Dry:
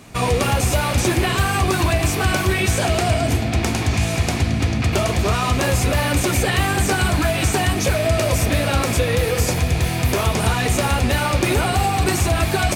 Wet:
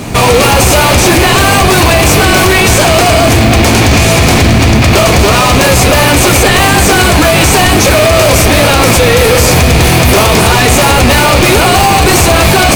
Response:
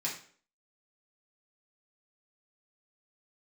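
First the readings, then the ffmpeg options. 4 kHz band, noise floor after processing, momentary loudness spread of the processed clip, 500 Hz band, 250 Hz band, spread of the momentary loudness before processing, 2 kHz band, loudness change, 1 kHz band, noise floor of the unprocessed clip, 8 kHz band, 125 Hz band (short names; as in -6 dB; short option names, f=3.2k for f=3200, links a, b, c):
+15.5 dB, -7 dBFS, 1 LU, +14.0 dB, +13.0 dB, 2 LU, +14.0 dB, +13.0 dB, +14.0 dB, -22 dBFS, +14.5 dB, +10.0 dB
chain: -filter_complex "[0:a]apsyclip=25.5dB,asplit=2[a][b];[b]acrusher=samples=24:mix=1:aa=0.000001,volume=-4.5dB[c];[a][c]amix=inputs=2:normalize=0,volume=-5.5dB"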